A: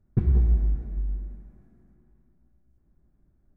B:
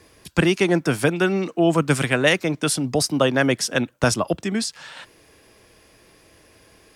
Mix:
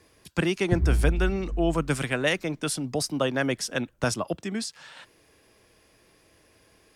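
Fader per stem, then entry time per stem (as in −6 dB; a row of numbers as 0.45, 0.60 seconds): −2.5, −7.0 decibels; 0.55, 0.00 seconds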